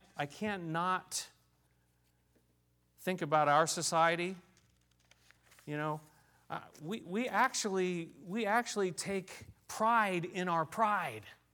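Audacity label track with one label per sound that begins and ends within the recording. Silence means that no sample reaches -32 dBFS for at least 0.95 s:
3.070000	4.300000	sound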